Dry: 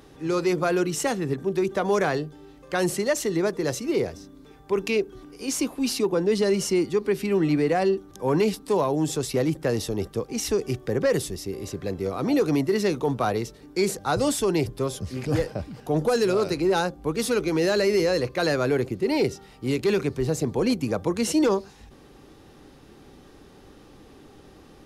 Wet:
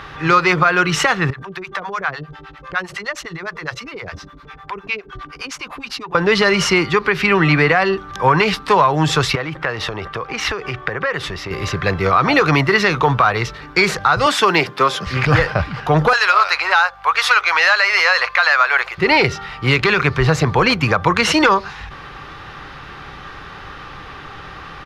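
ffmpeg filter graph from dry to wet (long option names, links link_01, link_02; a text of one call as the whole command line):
ffmpeg -i in.wav -filter_complex "[0:a]asettb=1/sr,asplit=3[link_01][link_02][link_03];[link_01]atrim=end=1.304[link_04];[link_02]atrim=start=1.3:end=6.15,asetpts=PTS-STARTPTS,afade=type=in:duration=0.004:curve=qsin,afade=type=out:start_time=4.846:duration=0.004:curve=qsin,acompressor=threshold=-35dB:ratio=4:attack=3.2:release=140:knee=1:detection=peak,acrossover=split=590[link_05][link_06];[link_05]aeval=exprs='val(0)*(1-1/2+1/2*cos(2*PI*9.8*n/s))':channel_layout=same[link_07];[link_06]aeval=exprs='val(0)*(1-1/2-1/2*cos(2*PI*9.8*n/s))':channel_layout=same[link_08];[link_07][link_08]amix=inputs=2:normalize=0[link_09];[link_03]atrim=start=6.146[link_10];[link_04][link_09]acrossfade=duration=0.004:curve1=hsin:curve2=qsin[link_11];[link_11][link_10]acrossfade=duration=0.004:curve1=qsin:curve2=hsin,asettb=1/sr,asplit=3[link_12][link_13][link_14];[link_12]atrim=end=9.354[link_15];[link_13]atrim=start=9.35:end=11.51,asetpts=PTS-STARTPTS,afade=type=in:duration=0.004:curve=qsin,afade=type=out:start_time=2.156:duration=0.004:curve=qsin,bass=frequency=250:gain=-6,treble=frequency=4000:gain=-9,acompressor=threshold=-31dB:ratio=8:attack=3.2:release=140:knee=1:detection=peak[link_16];[link_14]atrim=start=11.506[link_17];[link_15][link_16]acrossfade=duration=0.004:curve1=hsin:curve2=qsin[link_18];[link_18][link_17]acrossfade=duration=0.004:curve1=qsin:curve2=hsin,asettb=1/sr,asplit=3[link_19][link_20][link_21];[link_19]atrim=end=14.264[link_22];[link_20]atrim=start=14.26:end=15.07,asetpts=PTS-STARTPTS,afade=type=in:duration=0.004:curve=qsin,afade=type=out:start_time=0.806:duration=0.004:curve=qsin,highpass=frequency=190:width=0.5412,highpass=frequency=190:width=1.3066,acrusher=bits=8:mode=log:mix=0:aa=0.000001[link_23];[link_21]atrim=start=15.066[link_24];[link_22][link_23]acrossfade=duration=0.004:curve1=hsin:curve2=qsin[link_25];[link_25][link_24]acrossfade=duration=0.004:curve1=qsin:curve2=hsin,asettb=1/sr,asplit=3[link_26][link_27][link_28];[link_26]atrim=end=16.134[link_29];[link_27]atrim=start=16.13:end=18.98,asetpts=PTS-STARTPTS,afade=type=in:duration=0.004:curve=qsin,afade=type=out:start_time=2.846:duration=0.004:curve=qsin,highpass=frequency=700:width=0.5412,highpass=frequency=700:width=1.3066,aeval=exprs='val(0)+0.000631*(sin(2*PI*50*n/s)+sin(2*PI*2*50*n/s)/2+sin(2*PI*3*50*n/s)/3+sin(2*PI*4*50*n/s)/4+sin(2*PI*5*50*n/s)/5)':channel_layout=same[link_30];[link_28]atrim=start=18.976[link_31];[link_29][link_30]acrossfade=duration=0.004:curve1=hsin:curve2=qsin[link_32];[link_32][link_31]acrossfade=duration=0.004:curve1=qsin:curve2=hsin,firequalizer=gain_entry='entry(160,0);entry(230,-11);entry(1200,13);entry(8600,-15)':delay=0.05:min_phase=1,acompressor=threshold=-23dB:ratio=6,alimiter=level_in=15dB:limit=-1dB:release=50:level=0:latency=1,volume=-1dB" out.wav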